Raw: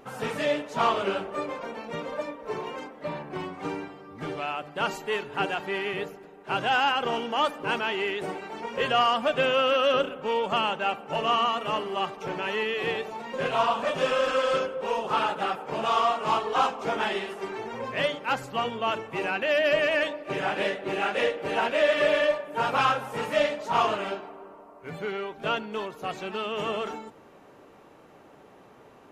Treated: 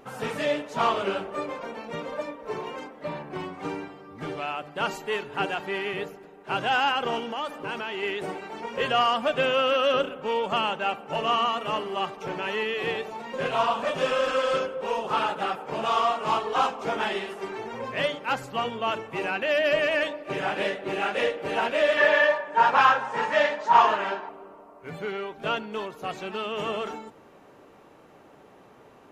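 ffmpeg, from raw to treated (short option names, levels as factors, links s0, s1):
-filter_complex "[0:a]asettb=1/sr,asplit=3[s0][s1][s2];[s0]atrim=end=7.194[s3];[s1]atrim=start=7.19:end=8.03,asetpts=PTS-STARTPTS,afade=t=in:d=0.004:c=qsin,afade=t=out:st=0.836:d=0.004:c=qsin,acompressor=threshold=0.0355:ratio=3:attack=3.2:release=140:knee=1:detection=peak[s4];[s2]atrim=start=8.026[s5];[s3][s4]acrossfade=d=0.004:c1=hsin:c2=qsin[s6];[s6][s5]acrossfade=d=0.004:c1=qsin:c2=hsin,asettb=1/sr,asplit=3[s7][s8][s9];[s7]atrim=end=21.974[s10];[s8]atrim=start=21.97:end=24.29,asetpts=PTS-STARTPTS,afade=t=in:d=0.004:c=qsin,afade=t=out:st=2.316:d=0.004:c=qsin,highpass=190,equalizer=f=300:t=q:w=4:g=-3,equalizer=f=940:t=q:w=4:g=10,equalizer=f=1700:t=q:w=4:g=10,lowpass=f=7200:w=0.5412,lowpass=f=7200:w=1.3066[s11];[s9]atrim=start=24.286[s12];[s10][s11]acrossfade=d=0.004:c1=hsin:c2=qsin[s13];[s13][s12]acrossfade=d=0.004:c1=qsin:c2=hsin"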